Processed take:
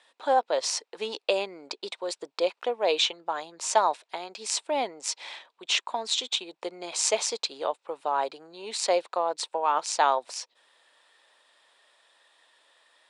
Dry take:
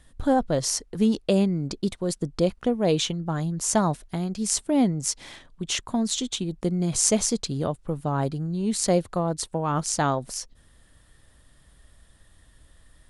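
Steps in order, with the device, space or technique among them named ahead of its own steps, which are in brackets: phone speaker on a table (cabinet simulation 470–7600 Hz, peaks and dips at 920 Hz +7 dB, 2.5 kHz +7 dB, 3.8 kHz +5 dB, 6.4 kHz -5 dB)

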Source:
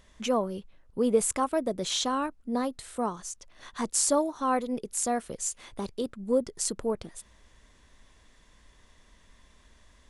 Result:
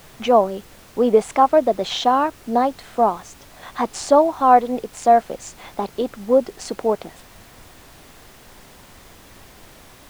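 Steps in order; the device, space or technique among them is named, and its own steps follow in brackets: horn gramophone (band-pass 220–3500 Hz; peaking EQ 750 Hz +11 dB 0.54 oct; wow and flutter; pink noise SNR 25 dB); trim +8 dB

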